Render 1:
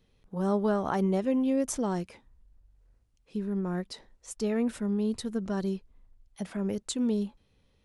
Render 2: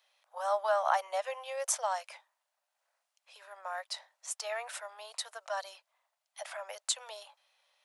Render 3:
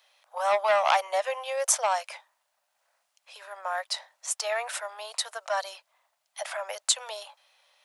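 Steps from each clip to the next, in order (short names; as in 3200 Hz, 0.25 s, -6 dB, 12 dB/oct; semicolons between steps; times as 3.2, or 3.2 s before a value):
steep high-pass 590 Hz 72 dB/oct; gain +4 dB
core saturation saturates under 2500 Hz; gain +8 dB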